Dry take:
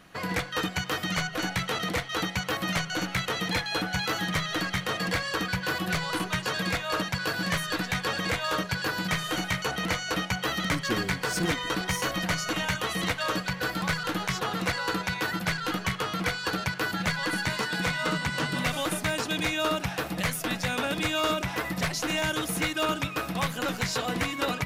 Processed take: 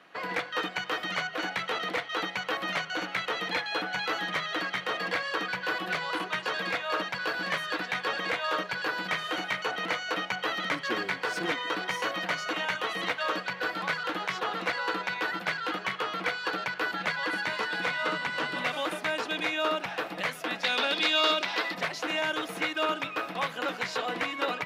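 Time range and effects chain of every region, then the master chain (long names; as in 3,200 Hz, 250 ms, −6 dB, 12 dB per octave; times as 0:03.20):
0:20.64–0:21.75: high-pass filter 180 Hz 24 dB per octave + parametric band 4,300 Hz +13 dB 1.1 octaves
whole clip: high-pass filter 160 Hz 12 dB per octave; three-way crossover with the lows and the highs turned down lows −13 dB, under 310 Hz, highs −15 dB, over 4,200 Hz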